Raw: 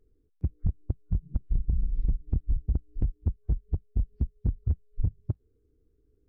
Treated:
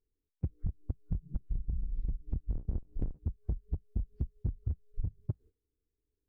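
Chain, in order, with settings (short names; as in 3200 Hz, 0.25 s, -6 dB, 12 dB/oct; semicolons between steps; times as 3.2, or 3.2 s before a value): 2.49–3.19 octaver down 1 oct, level +1 dB; compressor 6:1, threshold -34 dBFS, peak gain reduction 16 dB; gate -57 dBFS, range -22 dB; gain +3.5 dB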